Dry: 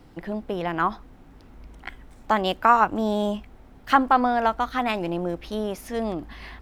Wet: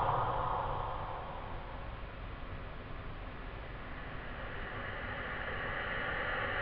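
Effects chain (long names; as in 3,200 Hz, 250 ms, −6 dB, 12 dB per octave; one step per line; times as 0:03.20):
gain on a spectral selection 0:00.78–0:01.55, 350–1,200 Hz −6 dB
single-sideband voice off tune −230 Hz 240–3,500 Hz
extreme stretch with random phases 14×, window 1.00 s, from 0:01.19
level +12.5 dB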